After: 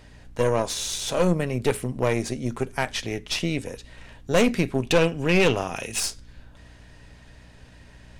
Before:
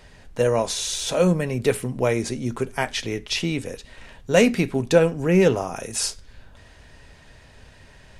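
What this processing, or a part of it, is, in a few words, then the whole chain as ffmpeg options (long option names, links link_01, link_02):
valve amplifier with mains hum: -filter_complex "[0:a]asettb=1/sr,asplit=3[link_01][link_02][link_03];[link_01]atrim=end=4.824[link_04];[link_02]atrim=start=4.82:end=6,asetpts=PTS-STARTPTS,afade=type=in:duration=0.004:curve=qsin,afade=type=out:start_time=1.176:duration=0.004:curve=qsin,equalizer=frequency=2800:width_type=o:width=0.79:gain=12[link_05];[link_03]atrim=start=5.996[link_06];[link_04][link_05]acrossfade=duration=0.004:curve1=hsin:curve2=qsin[link_07];[link_07][link_06]acrossfade=duration=0.004:curve1=qsin:curve2=hsin,aeval=exprs='(tanh(5.62*val(0)+0.7)-tanh(0.7))/5.62':channel_layout=same,aeval=exprs='val(0)+0.00282*(sin(2*PI*60*n/s)+sin(2*PI*2*60*n/s)/2+sin(2*PI*3*60*n/s)/3+sin(2*PI*4*60*n/s)/4+sin(2*PI*5*60*n/s)/5)':channel_layout=same,volume=1.5dB"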